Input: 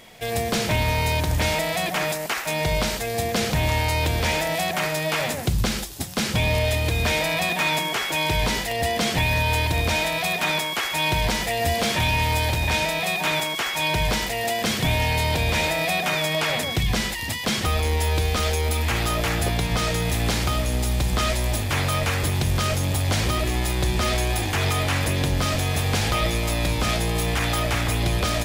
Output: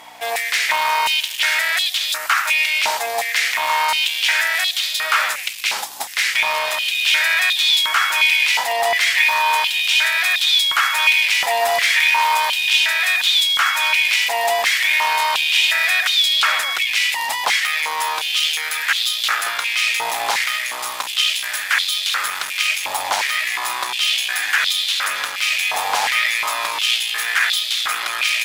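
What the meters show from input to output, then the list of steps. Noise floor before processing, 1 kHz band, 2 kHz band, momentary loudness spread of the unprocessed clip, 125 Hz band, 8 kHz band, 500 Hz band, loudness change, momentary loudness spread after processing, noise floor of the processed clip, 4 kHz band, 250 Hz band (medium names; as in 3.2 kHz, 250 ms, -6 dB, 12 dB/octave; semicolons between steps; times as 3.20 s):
-29 dBFS, +5.5 dB, +9.5 dB, 3 LU, under -35 dB, +4.5 dB, -4.0 dB, +6.0 dB, 6 LU, -27 dBFS, +9.5 dB, under -20 dB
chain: one-sided clip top -21 dBFS; hum 60 Hz, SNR 10 dB; step-sequenced high-pass 2.8 Hz 880–3600 Hz; trim +4.5 dB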